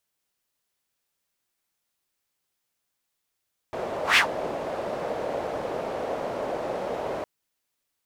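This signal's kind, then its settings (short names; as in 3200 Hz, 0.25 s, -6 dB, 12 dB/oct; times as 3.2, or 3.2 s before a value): whoosh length 3.51 s, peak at 0.44, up 0.14 s, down 0.11 s, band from 580 Hz, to 2500 Hz, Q 2.6, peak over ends 13.5 dB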